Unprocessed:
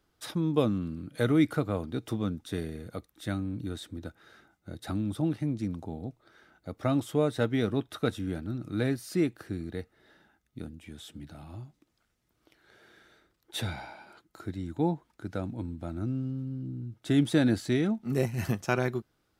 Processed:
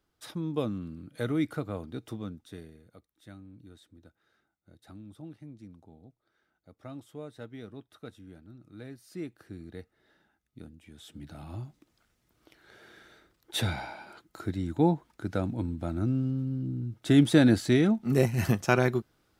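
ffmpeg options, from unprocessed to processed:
-af "volume=15dB,afade=t=out:st=1.97:d=0.87:silence=0.281838,afade=t=in:st=8.89:d=0.91:silence=0.334965,afade=t=in:st=10.93:d=0.66:silence=0.298538"

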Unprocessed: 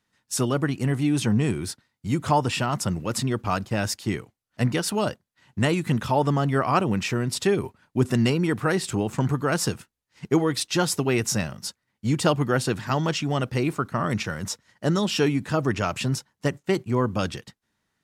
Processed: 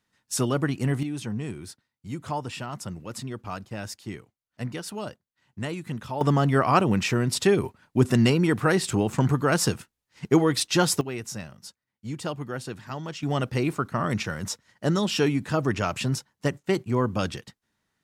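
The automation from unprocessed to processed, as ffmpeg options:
-af "asetnsamples=n=441:p=0,asendcmd='1.03 volume volume -9.5dB;6.21 volume volume 1.5dB;11.01 volume volume -10.5dB;13.23 volume volume -1dB',volume=-1dB"

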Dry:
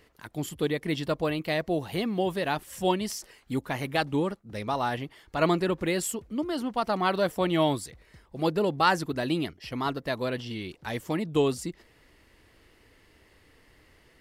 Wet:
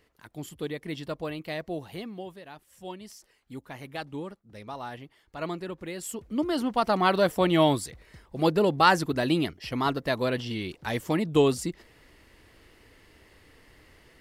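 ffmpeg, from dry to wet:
-af "volume=15dB,afade=t=out:st=1.78:d=0.66:silence=0.251189,afade=t=in:st=2.44:d=1.48:silence=0.375837,afade=t=in:st=5.99:d=0.43:silence=0.237137"

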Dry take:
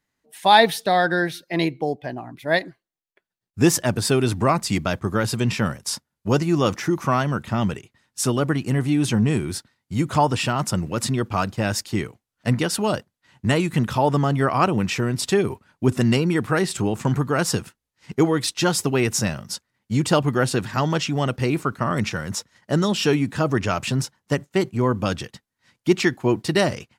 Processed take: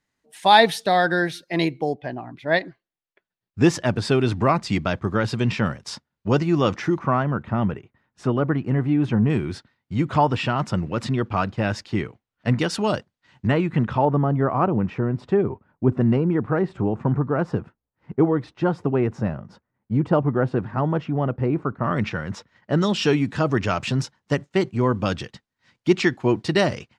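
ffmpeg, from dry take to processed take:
-af "asetnsamples=n=441:p=0,asendcmd='1.94 lowpass f 4100;6.99 lowpass f 1700;9.3 lowpass f 3300;12.58 lowpass f 5500;13.47 lowpass f 2100;14.05 lowpass f 1100;21.84 lowpass f 2800;22.81 lowpass f 5400',lowpass=9.6k"

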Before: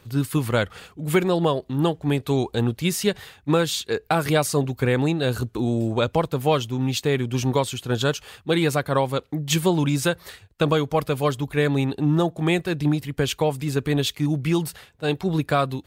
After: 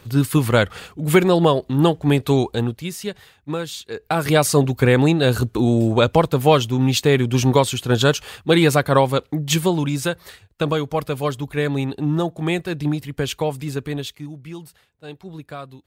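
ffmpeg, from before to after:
-af "volume=17.5dB,afade=t=out:st=2.29:d=0.58:silence=0.266073,afade=t=in:st=3.93:d=0.57:silence=0.251189,afade=t=out:st=8.99:d=0.88:silence=0.473151,afade=t=out:st=13.58:d=0.75:silence=0.237137"

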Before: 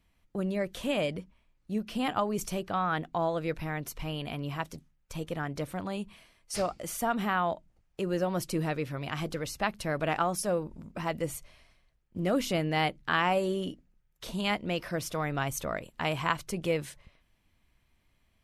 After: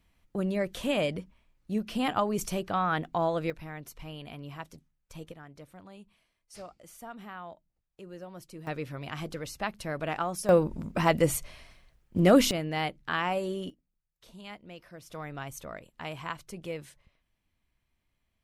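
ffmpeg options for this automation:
-af "asetnsamples=n=441:p=0,asendcmd='3.5 volume volume -7dB;5.32 volume volume -14.5dB;8.67 volume volume -3dB;10.49 volume volume 8.5dB;12.51 volume volume -3dB;13.7 volume volume -15dB;15.1 volume volume -8dB',volume=1.5dB"

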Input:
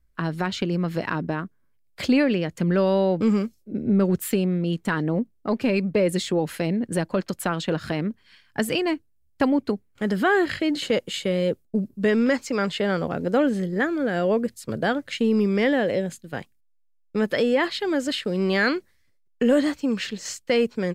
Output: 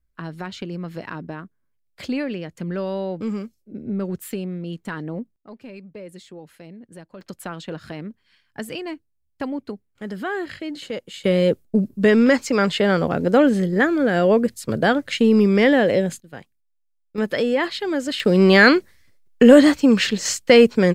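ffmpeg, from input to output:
-af "asetnsamples=n=441:p=0,asendcmd='5.36 volume volume -17dB;7.21 volume volume -7dB;11.24 volume volume 5.5dB;16.2 volume volume -6dB;17.18 volume volume 0.5dB;18.2 volume volume 9.5dB',volume=-6dB"

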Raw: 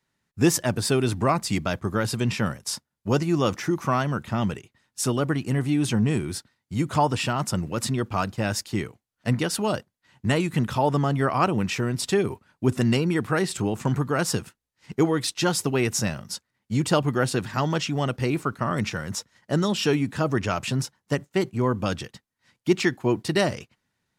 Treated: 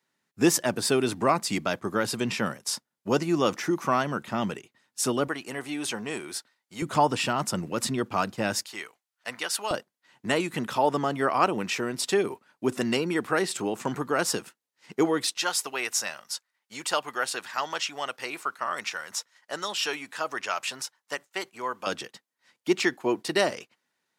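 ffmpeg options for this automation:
-af "asetnsamples=n=441:p=0,asendcmd='5.28 highpass f 510;6.82 highpass f 200;8.66 highpass f 840;9.71 highpass f 300;15.37 highpass f 820;21.87 highpass f 340',highpass=230"

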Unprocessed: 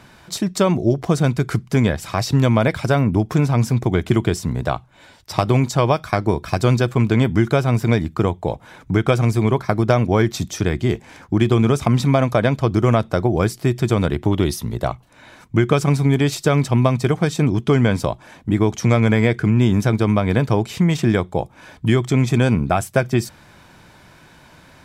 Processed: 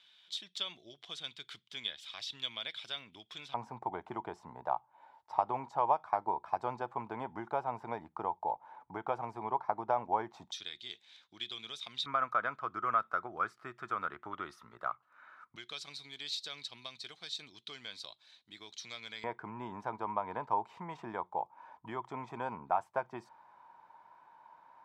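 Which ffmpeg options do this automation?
-af "asetnsamples=n=441:p=0,asendcmd='3.54 bandpass f 880;10.52 bandpass f 3700;12.06 bandpass f 1300;15.56 bandpass f 4000;19.24 bandpass f 930',bandpass=f=3.4k:t=q:w=8:csg=0"

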